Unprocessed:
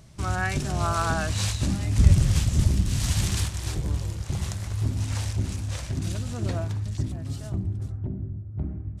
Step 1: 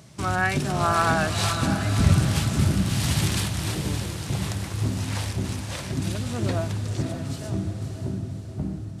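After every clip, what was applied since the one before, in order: HPF 130 Hz 12 dB/oct; dynamic EQ 6700 Hz, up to -6 dB, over -49 dBFS, Q 1.5; diffused feedback echo 0.572 s, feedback 50%, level -8 dB; gain +5 dB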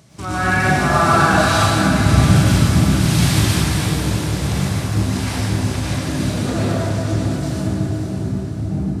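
plate-style reverb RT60 2.4 s, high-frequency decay 0.6×, pre-delay 90 ms, DRR -9 dB; gain -1 dB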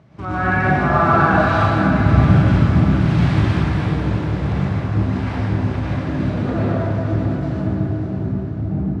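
LPF 1900 Hz 12 dB/oct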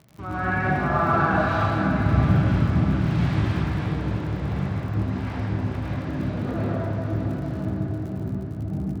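crackle 58/s -32 dBFS; gain -6.5 dB

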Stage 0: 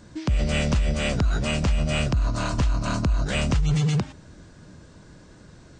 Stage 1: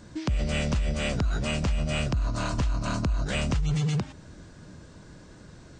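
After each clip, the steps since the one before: compressor 1.5:1, threshold -30 dBFS, peak gain reduction 5 dB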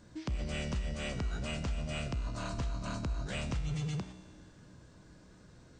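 resonator 62 Hz, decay 1.9 s, harmonics all, mix 70%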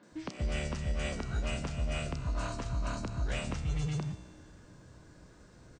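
three bands offset in time mids, highs, lows 30/120 ms, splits 180/3700 Hz; gain +2.5 dB

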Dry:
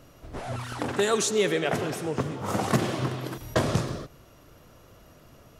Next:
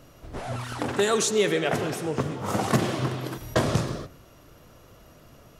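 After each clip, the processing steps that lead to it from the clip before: de-hum 91.81 Hz, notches 29; gain +1.5 dB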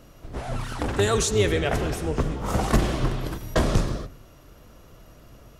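octaver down 2 oct, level +3 dB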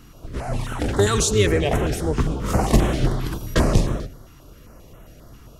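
stepped notch 7.5 Hz 580–4700 Hz; gain +4.5 dB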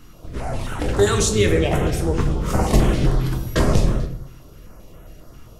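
shoebox room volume 80 m³, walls mixed, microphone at 0.49 m; gain -1 dB

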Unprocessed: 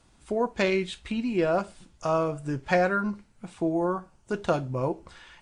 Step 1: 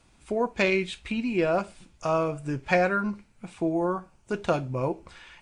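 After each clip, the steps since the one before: bell 2400 Hz +6.5 dB 0.29 oct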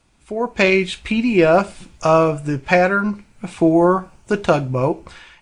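AGC gain up to 13.5 dB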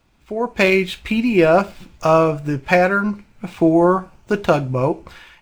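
median filter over 5 samples

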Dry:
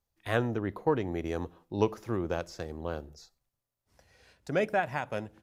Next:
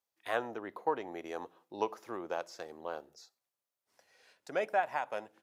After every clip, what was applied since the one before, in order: in parallel at -3 dB: compressor, threshold -36 dBFS, peak gain reduction 15.5 dB; on the sum: Bessel high-pass 470 Hz, order 2; dynamic EQ 840 Hz, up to +7 dB, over -43 dBFS, Q 1.2; gain -7 dB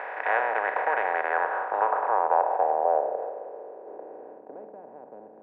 per-bin compression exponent 0.2; three-band isolator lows -19 dB, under 470 Hz, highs -13 dB, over 3400 Hz; low-pass sweep 2000 Hz -> 220 Hz, 1.08–4.76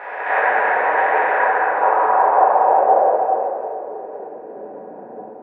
reverb RT60 2.7 s, pre-delay 4 ms, DRR -10.5 dB; gain -1.5 dB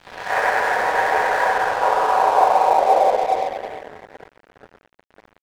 on a send: echo 98 ms -9 dB; on the sum: crossover distortion -28.5 dBFS; gain -1 dB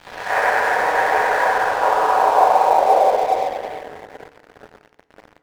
G.711 law mismatch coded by mu; FDN reverb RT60 1.3 s, high-frequency decay 0.85×, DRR 14 dB; gain +1 dB

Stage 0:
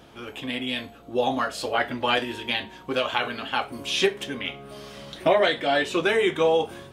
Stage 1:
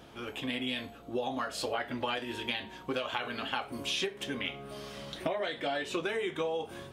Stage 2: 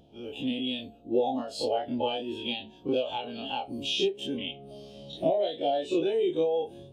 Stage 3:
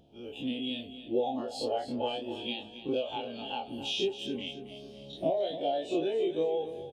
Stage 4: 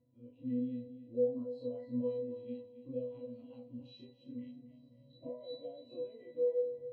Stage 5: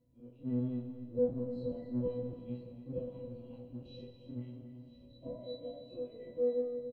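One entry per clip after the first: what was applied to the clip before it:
compressor 12:1, threshold -27 dBFS, peak gain reduction 13 dB; gain -2.5 dB
spectral dilation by 60 ms; band shelf 1500 Hz -13 dB 1.3 oct; spectral expander 1.5:1; gain +2 dB
feedback echo 0.274 s, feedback 39%, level -12 dB; gain -3.5 dB
octave resonator B, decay 0.42 s; gain +5.5 dB
octaver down 1 oct, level -2 dB; echo 1.008 s -14.5 dB; on a send at -7 dB: reverb RT60 1.5 s, pre-delay 35 ms

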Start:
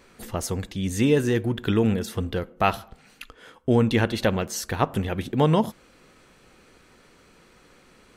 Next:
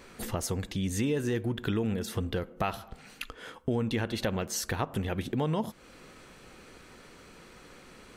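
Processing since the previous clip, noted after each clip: in parallel at -1 dB: limiter -15 dBFS, peak gain reduction 9 dB; on the sum: compressor 2.5:1, threshold -29 dBFS, peak gain reduction 12 dB; gain -2.5 dB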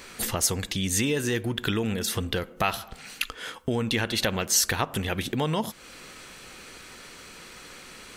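tilt shelf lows -5.5 dB, about 1400 Hz; gain +7 dB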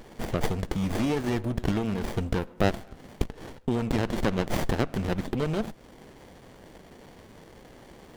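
running maximum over 33 samples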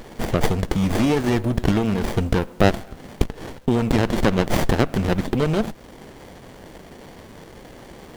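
bit-crush 10-bit; gain +7.5 dB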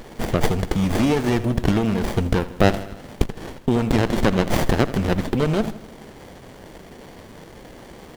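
feedback echo 80 ms, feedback 58%, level -16 dB

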